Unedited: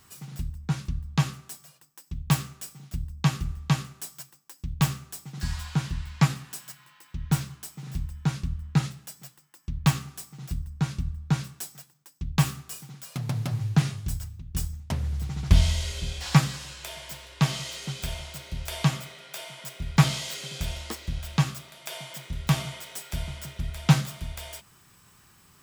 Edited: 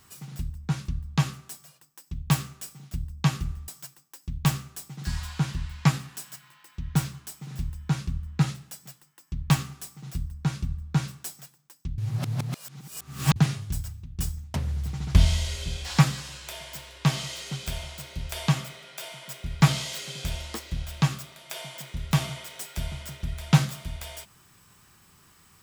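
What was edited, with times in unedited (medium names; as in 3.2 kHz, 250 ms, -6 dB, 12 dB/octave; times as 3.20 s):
3.68–4.04 s: delete
12.34–13.72 s: reverse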